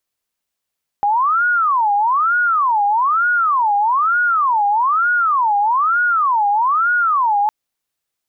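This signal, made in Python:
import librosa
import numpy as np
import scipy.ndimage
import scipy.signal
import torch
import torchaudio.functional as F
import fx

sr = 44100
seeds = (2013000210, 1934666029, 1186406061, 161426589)

y = fx.siren(sr, length_s=6.46, kind='wail', low_hz=810.0, high_hz=1450.0, per_s=1.1, wave='sine', level_db=-12.5)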